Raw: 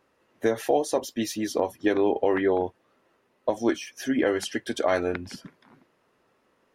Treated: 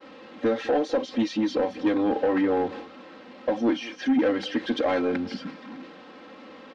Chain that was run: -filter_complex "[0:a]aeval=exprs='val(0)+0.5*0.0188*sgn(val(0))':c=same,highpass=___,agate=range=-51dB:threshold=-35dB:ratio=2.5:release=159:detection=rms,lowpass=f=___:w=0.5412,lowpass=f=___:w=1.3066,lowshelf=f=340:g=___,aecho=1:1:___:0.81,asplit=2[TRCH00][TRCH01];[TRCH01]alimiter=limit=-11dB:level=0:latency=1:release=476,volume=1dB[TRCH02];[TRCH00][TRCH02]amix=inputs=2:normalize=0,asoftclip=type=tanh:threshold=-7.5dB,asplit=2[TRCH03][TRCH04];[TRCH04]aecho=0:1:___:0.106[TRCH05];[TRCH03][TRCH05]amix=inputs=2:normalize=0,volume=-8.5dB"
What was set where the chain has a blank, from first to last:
210, 4300, 4300, 10.5, 3.8, 205